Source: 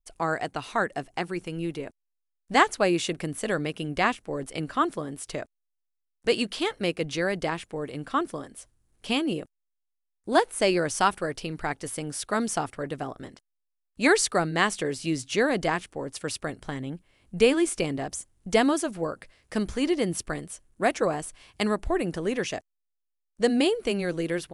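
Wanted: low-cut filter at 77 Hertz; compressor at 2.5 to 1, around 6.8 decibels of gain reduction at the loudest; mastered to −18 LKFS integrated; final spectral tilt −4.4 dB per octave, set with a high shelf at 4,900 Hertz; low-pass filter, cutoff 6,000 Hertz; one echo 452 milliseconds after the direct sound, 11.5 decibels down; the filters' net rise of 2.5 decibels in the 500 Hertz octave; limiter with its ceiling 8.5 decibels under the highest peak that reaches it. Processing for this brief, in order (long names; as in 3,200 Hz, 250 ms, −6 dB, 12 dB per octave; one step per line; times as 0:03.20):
high-pass filter 77 Hz
low-pass filter 6,000 Hz
parametric band 500 Hz +3 dB
high-shelf EQ 4,900 Hz +5 dB
downward compressor 2.5 to 1, threshold −24 dBFS
brickwall limiter −20 dBFS
single-tap delay 452 ms −11.5 dB
level +14 dB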